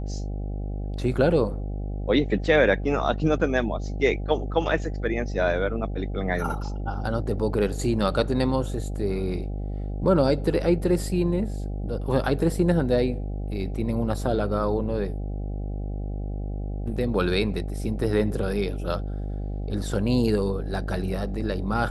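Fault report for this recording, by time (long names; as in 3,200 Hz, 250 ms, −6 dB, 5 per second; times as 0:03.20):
mains buzz 50 Hz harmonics 16 −30 dBFS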